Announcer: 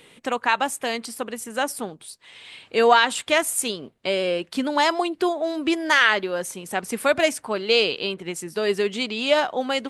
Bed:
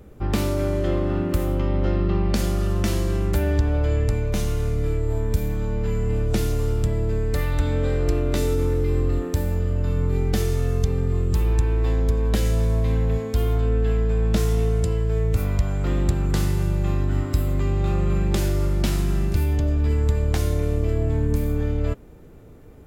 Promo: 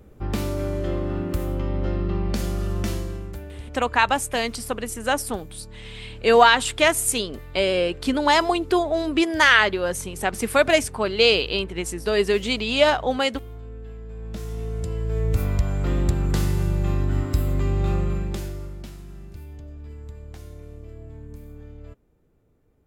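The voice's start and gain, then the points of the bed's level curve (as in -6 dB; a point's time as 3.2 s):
3.50 s, +2.0 dB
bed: 2.9 s -3.5 dB
3.52 s -17.5 dB
14 s -17.5 dB
15.32 s -0.5 dB
17.94 s -0.5 dB
18.97 s -18.5 dB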